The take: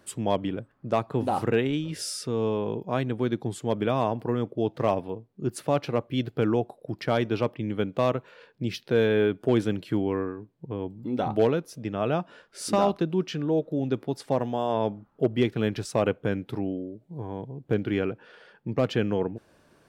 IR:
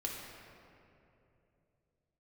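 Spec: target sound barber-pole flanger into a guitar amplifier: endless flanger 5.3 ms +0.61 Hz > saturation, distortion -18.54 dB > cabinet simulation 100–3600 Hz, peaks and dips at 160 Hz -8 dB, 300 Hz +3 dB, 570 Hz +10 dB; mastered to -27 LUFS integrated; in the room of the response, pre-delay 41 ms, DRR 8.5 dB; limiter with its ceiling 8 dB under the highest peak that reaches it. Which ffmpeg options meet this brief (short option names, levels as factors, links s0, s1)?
-filter_complex "[0:a]alimiter=limit=0.1:level=0:latency=1,asplit=2[s0][s1];[1:a]atrim=start_sample=2205,adelay=41[s2];[s1][s2]afir=irnorm=-1:irlink=0,volume=0.316[s3];[s0][s3]amix=inputs=2:normalize=0,asplit=2[s4][s5];[s5]adelay=5.3,afreqshift=0.61[s6];[s4][s6]amix=inputs=2:normalize=1,asoftclip=threshold=0.0631,highpass=100,equalizer=f=160:t=q:w=4:g=-8,equalizer=f=300:t=q:w=4:g=3,equalizer=f=570:t=q:w=4:g=10,lowpass=f=3600:w=0.5412,lowpass=f=3600:w=1.3066,volume=2.11"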